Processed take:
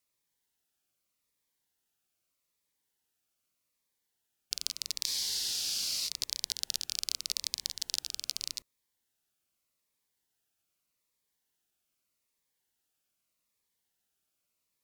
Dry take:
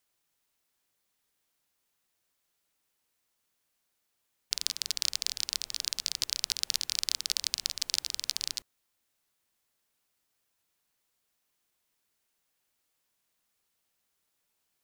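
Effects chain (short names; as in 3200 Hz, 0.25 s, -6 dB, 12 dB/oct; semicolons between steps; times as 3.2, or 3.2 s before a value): added harmonics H 2 -23 dB, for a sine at -4.5 dBFS; spectral freeze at 5.08, 1.00 s; cascading phaser falling 0.82 Hz; gain -3 dB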